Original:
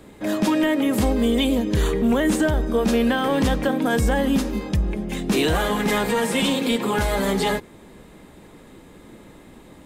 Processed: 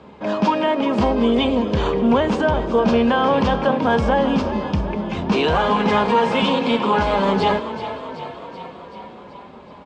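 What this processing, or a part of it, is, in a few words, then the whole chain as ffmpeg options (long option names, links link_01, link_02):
frequency-shifting delay pedal into a guitar cabinet: -filter_complex "[0:a]asplit=9[link_01][link_02][link_03][link_04][link_05][link_06][link_07][link_08][link_09];[link_02]adelay=380,afreqshift=31,volume=-12dB[link_10];[link_03]adelay=760,afreqshift=62,volume=-15.9dB[link_11];[link_04]adelay=1140,afreqshift=93,volume=-19.8dB[link_12];[link_05]adelay=1520,afreqshift=124,volume=-23.6dB[link_13];[link_06]adelay=1900,afreqshift=155,volume=-27.5dB[link_14];[link_07]adelay=2280,afreqshift=186,volume=-31.4dB[link_15];[link_08]adelay=2660,afreqshift=217,volume=-35.3dB[link_16];[link_09]adelay=3040,afreqshift=248,volume=-39.1dB[link_17];[link_01][link_10][link_11][link_12][link_13][link_14][link_15][link_16][link_17]amix=inputs=9:normalize=0,highpass=85,equalizer=frequency=120:width_type=q:width=4:gain=-9,equalizer=frequency=310:width_type=q:width=4:gain=-10,equalizer=frequency=970:width_type=q:width=4:gain=7,equalizer=frequency=1900:width_type=q:width=4:gain=-9,equalizer=frequency=3800:width_type=q:width=4:gain=-7,lowpass=frequency=4500:width=0.5412,lowpass=frequency=4500:width=1.3066,volume=4.5dB"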